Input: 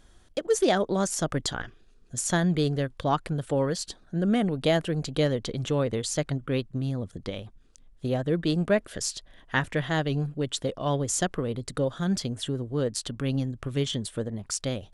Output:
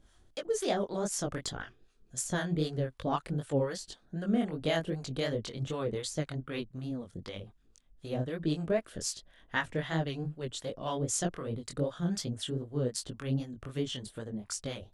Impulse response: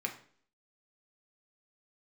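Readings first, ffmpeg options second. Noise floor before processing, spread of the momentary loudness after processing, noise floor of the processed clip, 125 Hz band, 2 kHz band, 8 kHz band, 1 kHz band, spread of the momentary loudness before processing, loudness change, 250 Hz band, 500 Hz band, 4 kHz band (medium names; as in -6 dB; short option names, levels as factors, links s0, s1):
-56 dBFS, 10 LU, -65 dBFS, -6.5 dB, -6.0 dB, -5.5 dB, -6.5 dB, 9 LU, -6.5 dB, -6.5 dB, -6.5 dB, -6.0 dB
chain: -filter_complex "[0:a]flanger=delay=18:depth=6.5:speed=2.6,acrossover=split=680[s0][s1];[s0]aeval=exprs='val(0)*(1-0.7/2+0.7/2*cos(2*PI*3.9*n/s))':c=same[s2];[s1]aeval=exprs='val(0)*(1-0.7/2-0.7/2*cos(2*PI*3.9*n/s))':c=same[s3];[s2][s3]amix=inputs=2:normalize=0"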